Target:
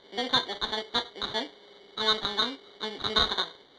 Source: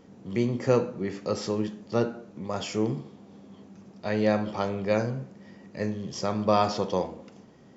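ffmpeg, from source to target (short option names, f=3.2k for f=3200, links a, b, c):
-af "asetrate=90405,aresample=44100,acrusher=samples=17:mix=1:aa=0.000001,lowpass=f=3.8k:t=q:w=7.1,volume=-6dB"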